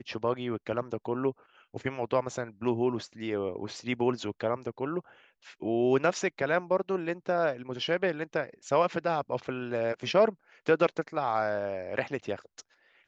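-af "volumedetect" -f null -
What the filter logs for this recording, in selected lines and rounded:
mean_volume: -30.4 dB
max_volume: -11.9 dB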